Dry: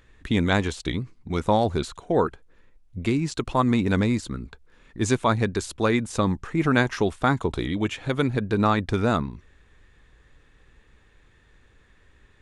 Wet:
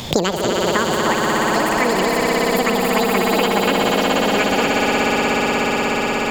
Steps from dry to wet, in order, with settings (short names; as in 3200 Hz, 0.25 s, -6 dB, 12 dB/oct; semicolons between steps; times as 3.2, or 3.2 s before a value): swelling echo 0.119 s, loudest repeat 8, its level -5.5 dB; wide varispeed 1.97×; three-band squash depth 100%